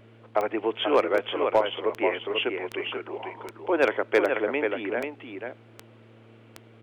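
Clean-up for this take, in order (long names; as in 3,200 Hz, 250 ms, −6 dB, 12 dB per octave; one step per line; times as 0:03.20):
clipped peaks rebuilt −12 dBFS
click removal
hum removal 113 Hz, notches 4
echo removal 487 ms −6 dB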